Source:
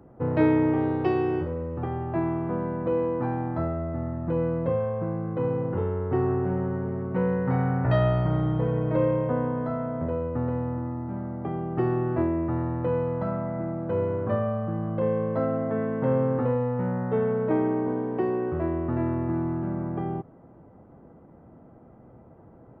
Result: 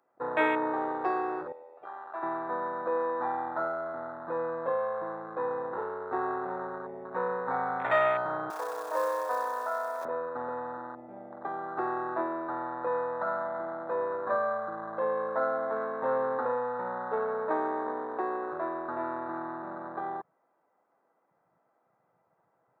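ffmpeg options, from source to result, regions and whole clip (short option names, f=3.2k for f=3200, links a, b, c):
-filter_complex "[0:a]asettb=1/sr,asplit=3[a][b][c];[a]atrim=end=1.524[d];[b]atrim=start=1.52:end=2.23,asetpts=PTS-STARTPTS,afade=t=in:d=0.004:c=qsin,afade=t=out:st=0.706:d=0.004:c=qsin,highpass=f=1.4k:p=1,equalizer=f=1.9k:w=2.1:g=-6[e];[c]atrim=start=2.226[f];[d][e]acrossfade=d=0.004:c1=hsin:c2=qsin[g];[g][f]acrossfade=d=0.004:c1=qsin:c2=hsin,asettb=1/sr,asplit=3[h][i][j];[h]atrim=end=8.504[k];[i]atrim=start=8.5:end=10.05,asetpts=PTS-STARTPTS,afade=t=in:d=0.004:c=qsin,afade=t=out:st=1.546:d=0.004:c=qsin,tiltshelf=f=1.3k:g=7,acrusher=bits=6:mode=log:mix=0:aa=0.000001,highpass=770[l];[j]atrim=start=10.046[m];[k][l]acrossfade=d=0.004:c1=hsin:c2=qsin[n];[n][m]acrossfade=d=0.004:c1=qsin:c2=hsin,afwtdn=0.0178,highpass=1k,bandreject=f=3k:w=9.7,volume=8dB"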